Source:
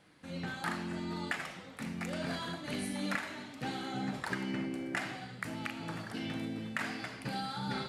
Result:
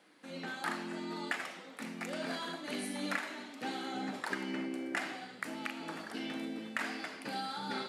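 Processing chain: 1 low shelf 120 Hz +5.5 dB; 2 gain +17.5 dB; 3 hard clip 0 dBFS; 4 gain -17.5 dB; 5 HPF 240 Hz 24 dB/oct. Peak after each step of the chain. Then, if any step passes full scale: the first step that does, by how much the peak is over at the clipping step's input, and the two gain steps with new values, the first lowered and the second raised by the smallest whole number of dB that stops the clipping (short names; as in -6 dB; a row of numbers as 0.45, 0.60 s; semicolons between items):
-19.0, -1.5, -1.5, -19.0, -18.5 dBFS; no overload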